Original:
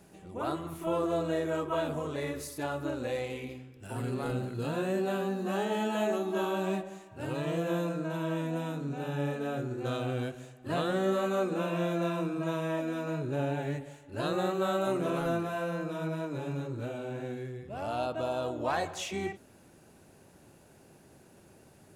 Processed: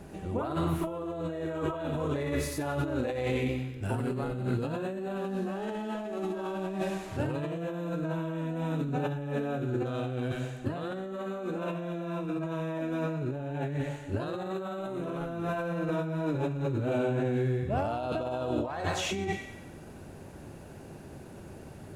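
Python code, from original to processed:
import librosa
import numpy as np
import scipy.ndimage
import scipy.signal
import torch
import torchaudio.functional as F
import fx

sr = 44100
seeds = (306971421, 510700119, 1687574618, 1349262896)

y = fx.delta_mod(x, sr, bps=64000, step_db=-46.5, at=(5.16, 7.17))
y = fx.low_shelf(y, sr, hz=110.0, db=9.0)
y = fx.hum_notches(y, sr, base_hz=60, count=3)
y = fx.echo_wet_highpass(y, sr, ms=92, feedback_pct=50, hz=1900.0, wet_db=-4.0)
y = fx.over_compress(y, sr, threshold_db=-37.0, ratio=-1.0)
y = fx.high_shelf(y, sr, hz=2900.0, db=-9.5)
y = y * 10.0 ** (5.0 / 20.0)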